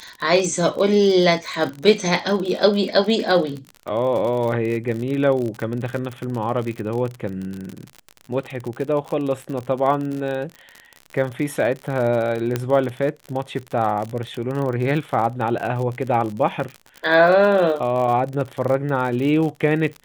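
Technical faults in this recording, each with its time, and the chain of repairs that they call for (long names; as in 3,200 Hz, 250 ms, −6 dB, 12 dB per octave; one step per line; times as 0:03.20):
surface crackle 56 per second −26 dBFS
0:12.56: click −8 dBFS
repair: click removal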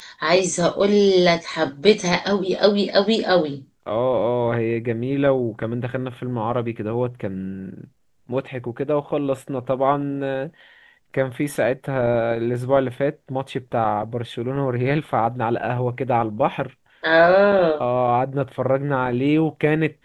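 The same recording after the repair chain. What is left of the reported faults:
0:12.56: click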